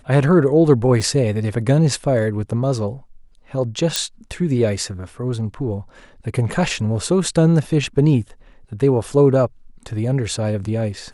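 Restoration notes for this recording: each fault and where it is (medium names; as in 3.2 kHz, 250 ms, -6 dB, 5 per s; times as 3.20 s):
1.00 s: dropout 3.2 ms
3.96 s: pop -3 dBFS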